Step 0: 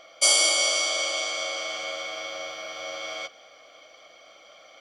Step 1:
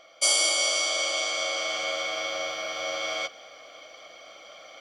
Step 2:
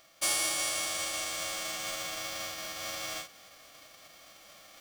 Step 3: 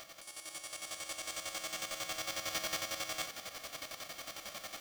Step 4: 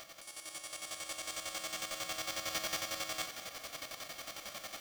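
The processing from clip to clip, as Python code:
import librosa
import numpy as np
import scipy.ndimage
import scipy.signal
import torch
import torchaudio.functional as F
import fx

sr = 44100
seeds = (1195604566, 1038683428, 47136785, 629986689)

y1 = fx.rider(x, sr, range_db=4, speed_s=2.0)
y2 = fx.envelope_flatten(y1, sr, power=0.3)
y2 = fx.end_taper(y2, sr, db_per_s=160.0)
y2 = y2 * 10.0 ** (-7.0 / 20.0)
y3 = fx.over_compress(y2, sr, threshold_db=-43.0, ratio=-1.0)
y3 = fx.chopper(y3, sr, hz=11.0, depth_pct=60, duty_pct=40)
y3 = y3 * 10.0 ** (4.0 / 20.0)
y4 = y3 + 10.0 ** (-15.5 / 20.0) * np.pad(y3, (int(223 * sr / 1000.0), 0))[:len(y3)]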